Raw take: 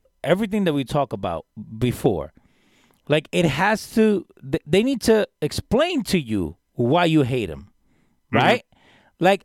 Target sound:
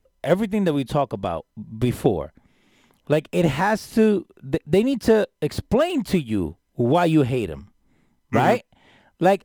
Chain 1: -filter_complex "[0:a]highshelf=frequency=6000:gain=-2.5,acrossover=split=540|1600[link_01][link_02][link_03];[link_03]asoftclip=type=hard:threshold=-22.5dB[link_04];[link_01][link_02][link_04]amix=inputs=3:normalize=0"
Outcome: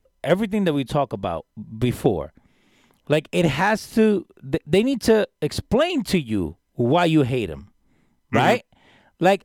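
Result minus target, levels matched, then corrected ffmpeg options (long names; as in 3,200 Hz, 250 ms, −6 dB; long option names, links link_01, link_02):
hard clipping: distortion −8 dB
-filter_complex "[0:a]highshelf=frequency=6000:gain=-2.5,acrossover=split=540|1600[link_01][link_02][link_03];[link_03]asoftclip=type=hard:threshold=-33.5dB[link_04];[link_01][link_02][link_04]amix=inputs=3:normalize=0"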